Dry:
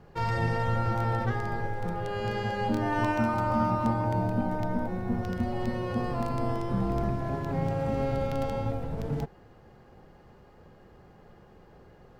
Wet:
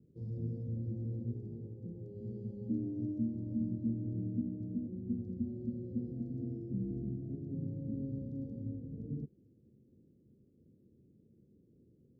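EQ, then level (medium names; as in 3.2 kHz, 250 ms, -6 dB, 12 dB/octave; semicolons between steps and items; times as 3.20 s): inverse Chebyshev band-stop 1.1–2.3 kHz, stop band 80 dB; cabinet simulation 140–3000 Hz, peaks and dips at 170 Hz -6 dB, 380 Hz -4 dB, 760 Hz -3 dB, 1.3 kHz -8 dB; -3.0 dB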